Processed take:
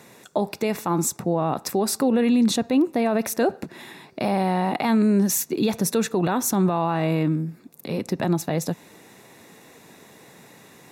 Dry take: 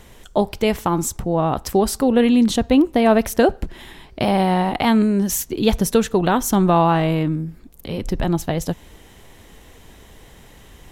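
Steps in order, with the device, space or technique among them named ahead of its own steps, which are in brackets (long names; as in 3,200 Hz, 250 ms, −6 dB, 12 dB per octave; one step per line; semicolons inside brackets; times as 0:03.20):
PA system with an anti-feedback notch (high-pass filter 140 Hz 24 dB per octave; Butterworth band-reject 3,100 Hz, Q 7; brickwall limiter −12.5 dBFS, peak gain reduction 10.5 dB)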